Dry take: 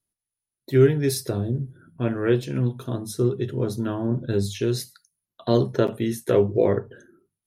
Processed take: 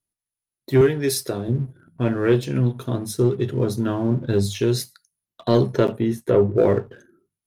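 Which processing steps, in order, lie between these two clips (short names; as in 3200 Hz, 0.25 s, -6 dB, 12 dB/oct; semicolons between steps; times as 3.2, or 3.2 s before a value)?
0.81–1.48 HPF 320 Hz 6 dB/oct; sample leveller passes 1; 5.92–6.58 high shelf 2200 Hz -11 dB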